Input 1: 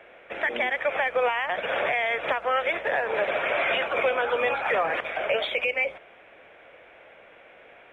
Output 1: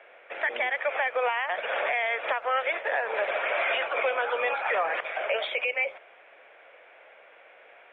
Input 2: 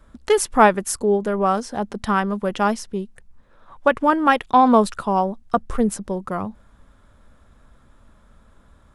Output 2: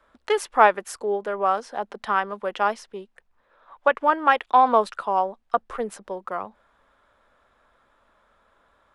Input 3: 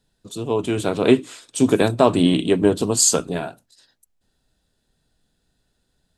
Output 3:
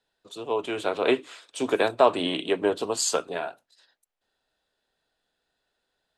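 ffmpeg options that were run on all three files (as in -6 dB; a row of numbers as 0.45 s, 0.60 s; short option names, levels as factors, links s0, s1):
-filter_complex "[0:a]acrossover=split=410 4100:gain=0.1 1 0.251[s0][s1][s2];[s0][s1][s2]amix=inputs=3:normalize=0,volume=0.891"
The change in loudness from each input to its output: -2.0 LU, -3.0 LU, -7.0 LU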